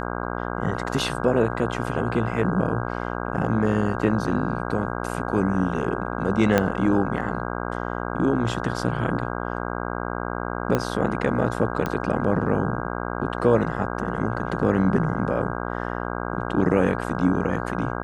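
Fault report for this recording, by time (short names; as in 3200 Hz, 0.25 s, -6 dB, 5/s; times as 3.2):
buzz 60 Hz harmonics 27 -29 dBFS
6.58 pop -5 dBFS
10.75 pop -9 dBFS
11.86 pop -13 dBFS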